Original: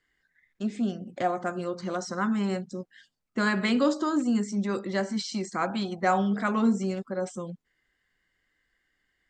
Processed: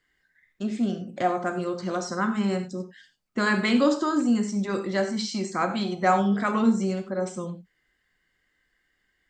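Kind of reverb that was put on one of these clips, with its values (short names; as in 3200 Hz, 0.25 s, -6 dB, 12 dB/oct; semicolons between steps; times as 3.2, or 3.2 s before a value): non-linear reverb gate 0.12 s flat, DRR 7 dB; gain +2 dB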